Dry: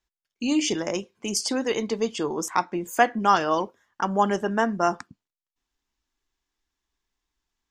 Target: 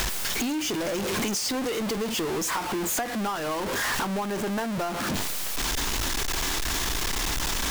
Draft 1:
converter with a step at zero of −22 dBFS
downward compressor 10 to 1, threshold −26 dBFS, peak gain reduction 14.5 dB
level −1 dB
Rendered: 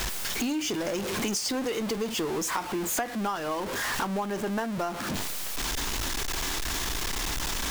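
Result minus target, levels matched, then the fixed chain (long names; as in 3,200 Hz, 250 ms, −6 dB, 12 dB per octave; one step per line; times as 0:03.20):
converter with a step at zero: distortion −5 dB
converter with a step at zero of −14 dBFS
downward compressor 10 to 1, threshold −26 dBFS, peak gain reduction 16 dB
level −1 dB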